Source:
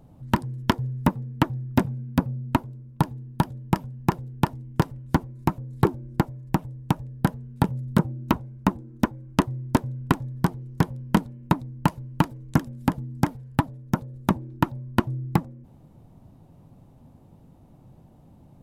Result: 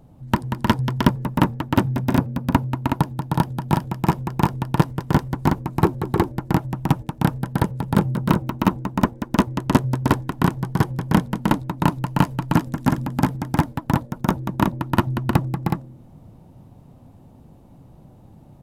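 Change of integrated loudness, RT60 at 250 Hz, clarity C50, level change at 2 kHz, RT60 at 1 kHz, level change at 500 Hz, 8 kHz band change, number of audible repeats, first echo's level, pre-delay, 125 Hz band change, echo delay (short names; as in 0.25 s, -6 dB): +4.5 dB, none, none, +5.0 dB, none, +5.0 dB, +5.0 dB, 3, -8.5 dB, none, +5.0 dB, 0.185 s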